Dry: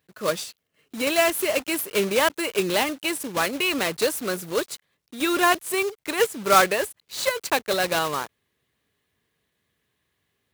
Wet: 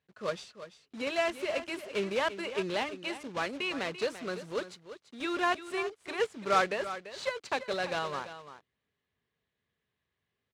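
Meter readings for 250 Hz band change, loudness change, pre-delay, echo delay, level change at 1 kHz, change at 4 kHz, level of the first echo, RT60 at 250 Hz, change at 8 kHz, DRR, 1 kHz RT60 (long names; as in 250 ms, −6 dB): −10.0 dB, −10.0 dB, no reverb audible, 340 ms, −9.0 dB, −11.0 dB, −12.5 dB, no reverb audible, −19.0 dB, no reverb audible, no reverb audible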